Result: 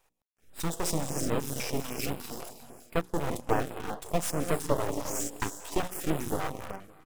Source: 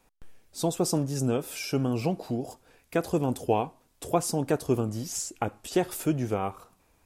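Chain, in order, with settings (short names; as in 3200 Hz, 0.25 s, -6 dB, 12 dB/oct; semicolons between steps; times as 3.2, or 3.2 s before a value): 1.8–2.49 RIAA curve recording; 4.68–5.57 frequency shift +180 Hz; non-linear reverb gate 0.39 s rising, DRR 6.5 dB; 3.01–3.65 gate -30 dBFS, range -14 dB; low shelf 95 Hz -10 dB; notches 60/120/180/240/300/360/420/480/540 Hz; echo 0.561 s -21.5 dB; in parallel at -8 dB: bit-crush 5-bit; on the sum: notch 4500 Hz, Q 6.6; half-wave rectifier; stepped notch 10 Hz 240–6000 Hz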